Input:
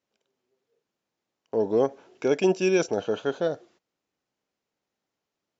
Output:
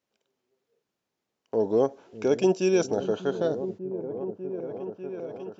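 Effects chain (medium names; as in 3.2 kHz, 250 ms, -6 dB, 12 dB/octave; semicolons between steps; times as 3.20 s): dynamic bell 2.1 kHz, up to -7 dB, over -47 dBFS, Q 1.3; delay with an opening low-pass 595 ms, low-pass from 200 Hz, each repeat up 1 oct, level -6 dB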